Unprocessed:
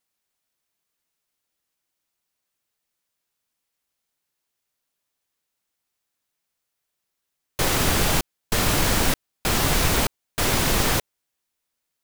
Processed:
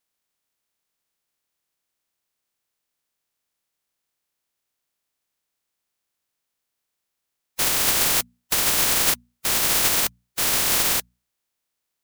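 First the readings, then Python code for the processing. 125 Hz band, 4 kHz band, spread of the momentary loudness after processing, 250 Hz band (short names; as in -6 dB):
-13.0 dB, +1.5 dB, 7 LU, -9.0 dB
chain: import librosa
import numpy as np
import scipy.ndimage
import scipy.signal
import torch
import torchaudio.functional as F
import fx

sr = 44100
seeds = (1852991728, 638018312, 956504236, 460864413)

y = fx.spec_flatten(x, sr, power=0.11)
y = fx.hum_notches(y, sr, base_hz=60, count=4)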